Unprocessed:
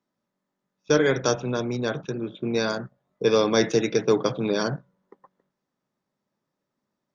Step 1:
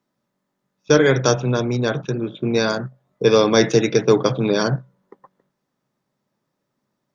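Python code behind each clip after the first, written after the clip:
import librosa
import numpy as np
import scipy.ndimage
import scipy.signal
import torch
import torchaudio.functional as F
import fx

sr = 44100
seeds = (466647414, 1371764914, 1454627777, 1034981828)

y = fx.peak_eq(x, sr, hz=130.0, db=6.5, octaves=0.21)
y = F.gain(torch.from_numpy(y), 5.5).numpy()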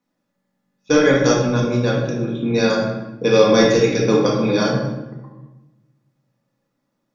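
y = x + 0.34 * np.pad(x, (int(3.6 * sr / 1000.0), 0))[:len(x)]
y = fx.room_shoebox(y, sr, seeds[0], volume_m3=490.0, walls='mixed', distance_m=1.9)
y = F.gain(torch.from_numpy(y), -4.0).numpy()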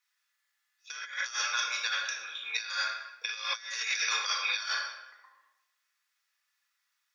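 y = scipy.signal.sosfilt(scipy.signal.butter(4, 1500.0, 'highpass', fs=sr, output='sos'), x)
y = fx.over_compress(y, sr, threshold_db=-32.0, ratio=-0.5)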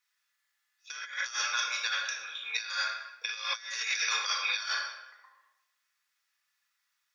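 y = fx.peak_eq(x, sr, hz=310.0, db=-3.5, octaves=0.62)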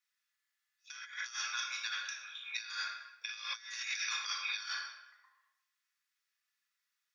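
y = scipy.signal.sosfilt(scipy.signal.butter(2, 1100.0, 'highpass', fs=sr, output='sos'), x)
y = F.gain(torch.from_numpy(y), -6.5).numpy()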